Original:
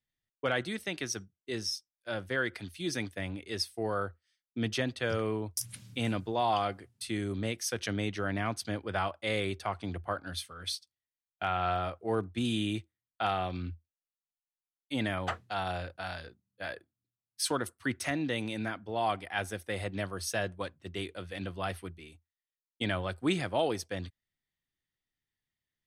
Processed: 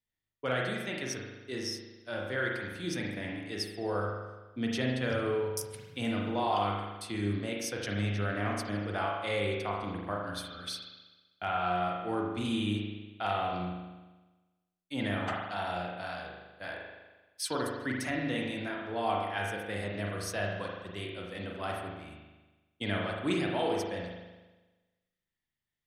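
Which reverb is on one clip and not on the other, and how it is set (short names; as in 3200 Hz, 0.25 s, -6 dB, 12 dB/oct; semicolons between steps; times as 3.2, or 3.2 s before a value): spring tank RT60 1.2 s, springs 39 ms, chirp 40 ms, DRR -1.5 dB; gain -3.5 dB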